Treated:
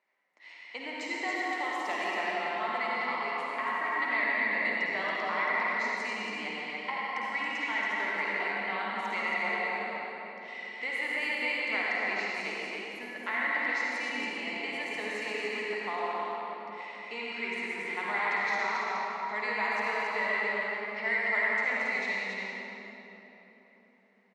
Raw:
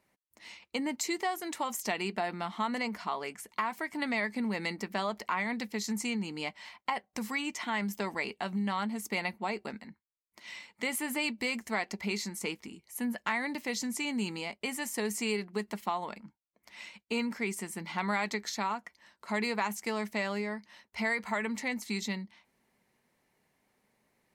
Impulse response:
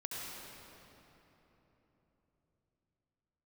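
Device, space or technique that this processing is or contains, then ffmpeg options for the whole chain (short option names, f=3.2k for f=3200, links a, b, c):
station announcement: -filter_complex "[0:a]highpass=490,lowpass=3.6k,equalizer=f=2k:t=o:w=0.24:g=7.5,aecho=1:1:52.48|277:0.355|0.631[a];[1:a]atrim=start_sample=2205[b];[a][b]afir=irnorm=-1:irlink=0"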